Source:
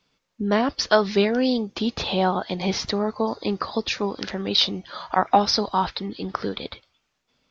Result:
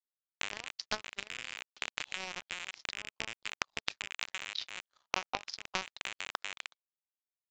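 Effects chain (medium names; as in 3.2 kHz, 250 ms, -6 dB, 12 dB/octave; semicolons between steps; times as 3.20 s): rattle on loud lows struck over -36 dBFS, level -11 dBFS; high-pass 820 Hz 12 dB/octave; compression 2.5:1, threshold -26 dBFS, peak gain reduction 8 dB; power-law waveshaper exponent 3; resampled via 16 kHz; trim +4 dB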